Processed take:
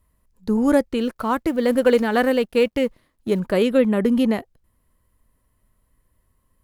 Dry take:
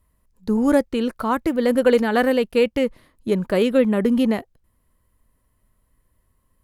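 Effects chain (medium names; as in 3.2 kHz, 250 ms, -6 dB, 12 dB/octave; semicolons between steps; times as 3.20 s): 0.98–3.40 s: companding laws mixed up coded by A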